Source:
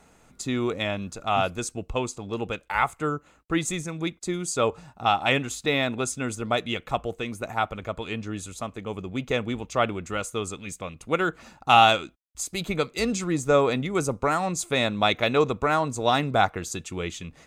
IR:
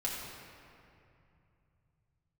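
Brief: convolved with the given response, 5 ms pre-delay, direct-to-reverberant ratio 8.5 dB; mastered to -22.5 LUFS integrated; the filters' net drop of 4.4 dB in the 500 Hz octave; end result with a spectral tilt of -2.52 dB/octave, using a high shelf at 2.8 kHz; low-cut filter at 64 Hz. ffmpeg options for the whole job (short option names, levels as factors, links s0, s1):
-filter_complex "[0:a]highpass=64,equalizer=f=500:t=o:g=-6,highshelf=f=2800:g=8.5,asplit=2[s0][s1];[1:a]atrim=start_sample=2205,adelay=5[s2];[s1][s2]afir=irnorm=-1:irlink=0,volume=0.237[s3];[s0][s3]amix=inputs=2:normalize=0,volume=1.26"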